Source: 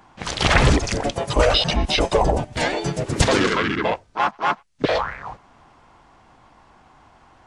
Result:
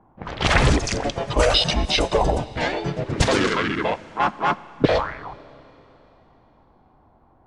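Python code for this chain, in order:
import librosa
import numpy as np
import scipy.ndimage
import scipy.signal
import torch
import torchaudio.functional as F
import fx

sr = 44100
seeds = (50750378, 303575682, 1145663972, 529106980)

y = fx.low_shelf(x, sr, hz=370.0, db=9.5, at=(4.2, 5.0))
y = fx.env_lowpass(y, sr, base_hz=680.0, full_db=-14.5)
y = fx.high_shelf(y, sr, hz=6000.0, db=8.0, at=(0.85, 2.02))
y = fx.rev_schroeder(y, sr, rt60_s=3.7, comb_ms=29, drr_db=18.5)
y = F.gain(torch.from_numpy(y), -1.5).numpy()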